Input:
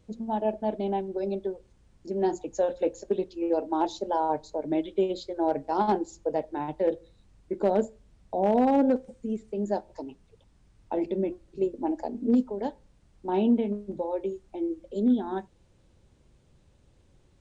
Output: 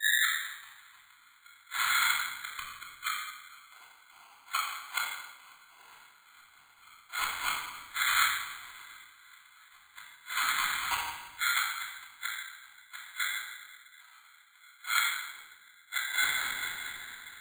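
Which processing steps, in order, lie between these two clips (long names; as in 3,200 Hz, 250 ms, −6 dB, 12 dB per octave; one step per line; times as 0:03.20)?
turntable start at the beginning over 0.45 s
parametric band 680 Hz −4.5 dB 0.44 octaves
echo whose low-pass opens from repeat to repeat 217 ms, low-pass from 200 Hz, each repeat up 1 octave, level −3 dB
random phases in short frames
ring modulation 1,800 Hz
gate with flip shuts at −24 dBFS, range −30 dB
high-shelf EQ 4,000 Hz −11 dB
rectangular room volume 1,600 cubic metres, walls mixed, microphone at 3.2 metres
bad sample-rate conversion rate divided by 8×, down filtered, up hold
multiband upward and downward expander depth 40%
level +6 dB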